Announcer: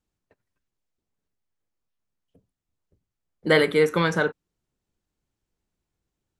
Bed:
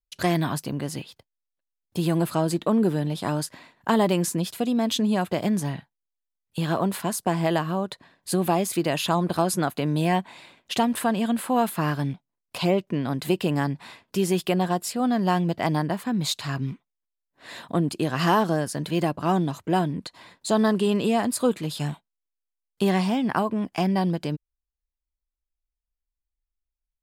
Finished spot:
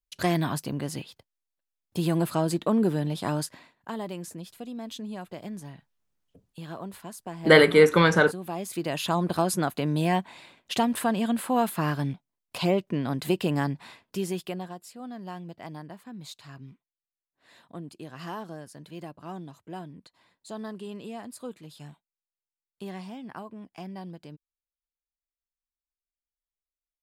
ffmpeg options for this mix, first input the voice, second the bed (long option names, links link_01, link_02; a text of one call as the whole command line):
ffmpeg -i stem1.wav -i stem2.wav -filter_complex "[0:a]adelay=4000,volume=3dB[link_01];[1:a]volume=10dB,afade=type=out:start_time=3.45:duration=0.45:silence=0.251189,afade=type=in:start_time=8.44:duration=0.8:silence=0.251189,afade=type=out:start_time=13.66:duration=1.09:silence=0.188365[link_02];[link_01][link_02]amix=inputs=2:normalize=0" out.wav